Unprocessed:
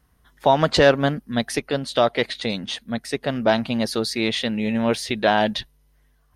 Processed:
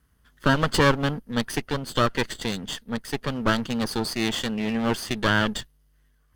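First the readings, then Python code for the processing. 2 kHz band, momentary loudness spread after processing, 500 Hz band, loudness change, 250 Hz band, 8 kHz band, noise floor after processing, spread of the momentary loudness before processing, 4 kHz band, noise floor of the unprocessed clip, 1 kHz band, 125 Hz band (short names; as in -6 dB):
-0.5 dB, 9 LU, -7.5 dB, -3.5 dB, -2.0 dB, 0.0 dB, -64 dBFS, 10 LU, -3.0 dB, -62 dBFS, -4.0 dB, +1.0 dB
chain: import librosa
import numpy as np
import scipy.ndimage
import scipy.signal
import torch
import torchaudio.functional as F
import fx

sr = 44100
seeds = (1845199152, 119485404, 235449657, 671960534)

y = fx.lower_of_two(x, sr, delay_ms=0.63)
y = y * librosa.db_to_amplitude(-2.0)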